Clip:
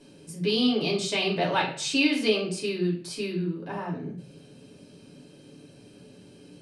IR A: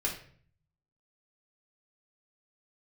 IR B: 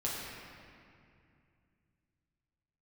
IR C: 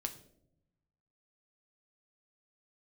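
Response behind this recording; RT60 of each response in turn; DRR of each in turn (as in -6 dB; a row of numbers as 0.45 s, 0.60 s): A; 0.50 s, 2.4 s, 0.75 s; -3.5 dB, -6.0 dB, 5.5 dB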